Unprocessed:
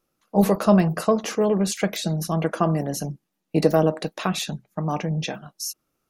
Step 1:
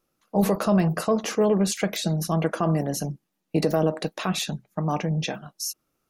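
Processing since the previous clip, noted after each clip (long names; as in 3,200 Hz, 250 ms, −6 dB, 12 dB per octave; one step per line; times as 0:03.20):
brickwall limiter −11.5 dBFS, peak gain reduction 7 dB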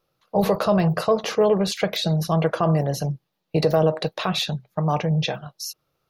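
octave-band graphic EQ 125/250/500/1,000/4,000/8,000 Hz +10/−9/+6/+3/+8/−9 dB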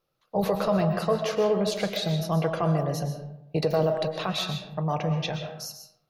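comb and all-pass reverb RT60 0.81 s, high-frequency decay 0.55×, pre-delay 85 ms, DRR 6 dB
level −5.5 dB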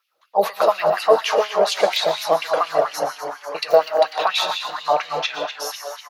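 echo with shifted repeats 247 ms, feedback 63%, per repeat +140 Hz, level −11.5 dB
auto-filter high-pass sine 4.2 Hz 510–2,700 Hz
level +6.5 dB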